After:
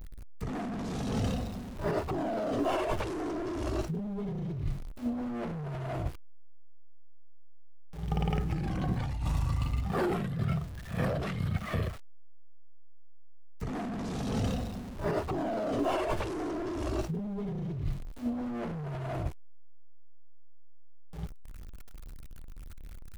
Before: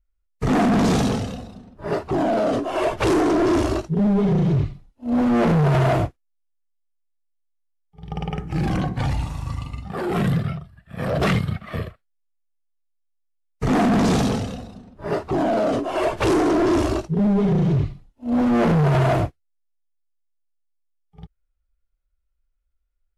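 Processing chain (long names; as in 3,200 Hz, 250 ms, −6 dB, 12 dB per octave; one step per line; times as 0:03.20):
converter with a step at zero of −39 dBFS
low-shelf EQ 77 Hz +7.5 dB
compressor whose output falls as the input rises −24 dBFS, ratio −1
level −8 dB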